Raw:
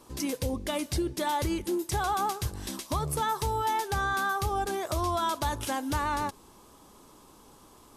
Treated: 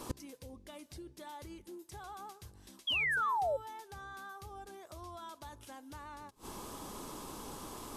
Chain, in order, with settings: notches 60/120 Hz; flipped gate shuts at -32 dBFS, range -28 dB; painted sound fall, 2.87–3.57, 520–3400 Hz -41 dBFS; gain +9 dB

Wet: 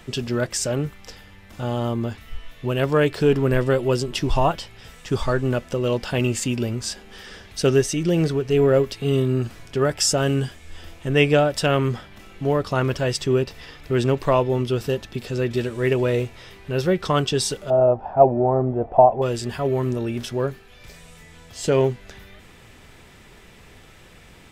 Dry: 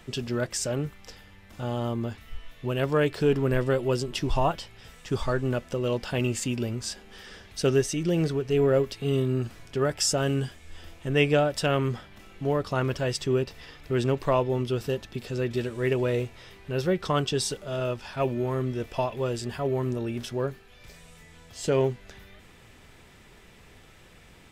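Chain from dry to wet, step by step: 17.7–19.22 synth low-pass 750 Hz, resonance Q 6.8; gain +5 dB

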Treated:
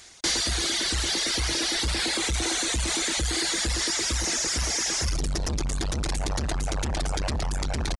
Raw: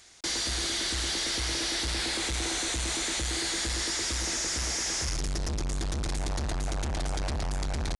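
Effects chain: reverb removal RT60 1.1 s; gain +6.5 dB

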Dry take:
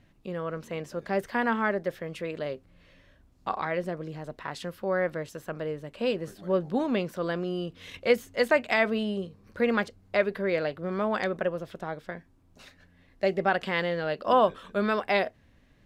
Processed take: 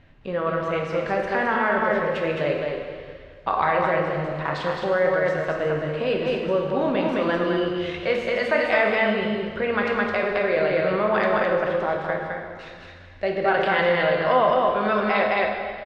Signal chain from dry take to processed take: echo 0.214 s -4 dB; in parallel at +1.5 dB: negative-ratio compressor -30 dBFS; on the sum: LPF 3200 Hz 12 dB/oct; bell 220 Hz -6.5 dB 1.6 oct; plate-style reverb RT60 1.9 s, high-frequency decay 0.95×, DRR 1 dB

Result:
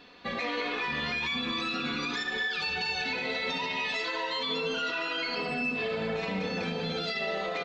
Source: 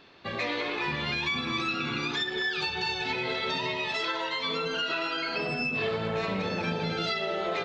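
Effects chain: comb 4.1 ms, depth 72%; limiter -23.5 dBFS, peak gain reduction 7 dB; on a send: thinning echo 74 ms, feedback 74%, level -13 dB

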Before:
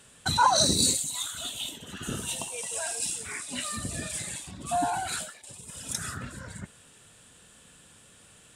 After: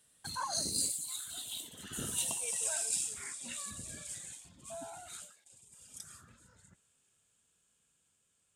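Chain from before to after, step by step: Doppler pass-by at 2.37, 19 m/s, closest 12 m; high shelf 5700 Hz +11 dB; gain -7 dB

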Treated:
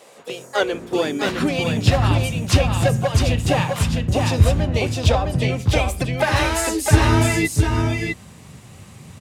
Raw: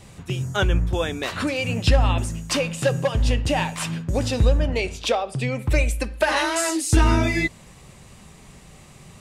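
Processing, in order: harmoniser +5 st -8 dB; echo 0.658 s -3.5 dB; high-pass sweep 510 Hz -> 92 Hz, 0.5–2.14

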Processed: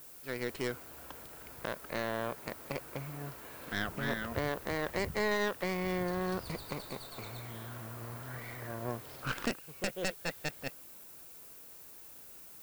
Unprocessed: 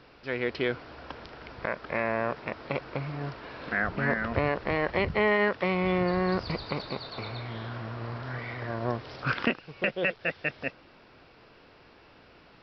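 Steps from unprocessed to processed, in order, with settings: tracing distortion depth 0.18 ms; added noise violet -44 dBFS; gain -8 dB

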